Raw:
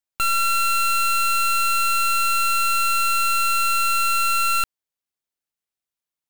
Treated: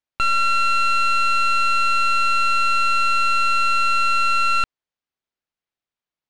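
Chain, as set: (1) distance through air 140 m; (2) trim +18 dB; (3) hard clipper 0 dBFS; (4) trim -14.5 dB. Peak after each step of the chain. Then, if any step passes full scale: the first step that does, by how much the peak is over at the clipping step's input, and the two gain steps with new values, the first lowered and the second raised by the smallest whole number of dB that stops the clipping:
-19.5 dBFS, -1.5 dBFS, -1.5 dBFS, -16.0 dBFS; nothing clips

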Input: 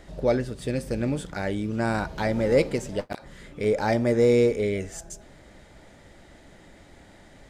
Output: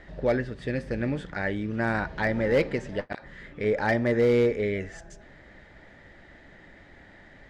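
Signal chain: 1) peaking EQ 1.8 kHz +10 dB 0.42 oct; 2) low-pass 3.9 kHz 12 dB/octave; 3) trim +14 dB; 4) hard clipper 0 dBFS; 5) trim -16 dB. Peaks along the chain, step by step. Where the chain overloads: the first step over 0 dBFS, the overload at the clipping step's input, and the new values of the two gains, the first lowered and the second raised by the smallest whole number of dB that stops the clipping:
-8.5 dBFS, -9.0 dBFS, +5.0 dBFS, 0.0 dBFS, -16.0 dBFS; step 3, 5.0 dB; step 3 +9 dB, step 5 -11 dB

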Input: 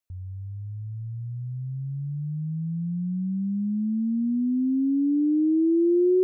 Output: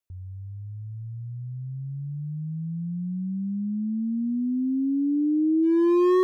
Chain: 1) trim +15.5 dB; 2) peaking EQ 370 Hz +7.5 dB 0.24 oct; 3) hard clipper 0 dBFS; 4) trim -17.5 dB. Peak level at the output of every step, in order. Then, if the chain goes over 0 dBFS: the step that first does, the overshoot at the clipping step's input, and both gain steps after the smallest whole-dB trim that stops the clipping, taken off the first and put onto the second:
-0.5 dBFS, +7.0 dBFS, 0.0 dBFS, -17.5 dBFS; step 2, 7.0 dB; step 1 +8.5 dB, step 4 -10.5 dB

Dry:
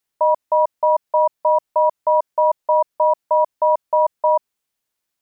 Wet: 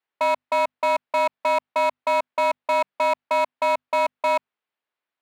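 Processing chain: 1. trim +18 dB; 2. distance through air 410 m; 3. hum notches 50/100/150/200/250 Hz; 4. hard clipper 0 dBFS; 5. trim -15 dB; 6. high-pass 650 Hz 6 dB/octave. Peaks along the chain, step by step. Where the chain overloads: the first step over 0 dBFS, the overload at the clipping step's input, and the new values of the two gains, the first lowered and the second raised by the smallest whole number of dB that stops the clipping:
+9.5 dBFS, +8.0 dBFS, +8.0 dBFS, 0.0 dBFS, -15.0 dBFS, -12.5 dBFS; step 1, 8.0 dB; step 1 +10 dB, step 5 -7 dB

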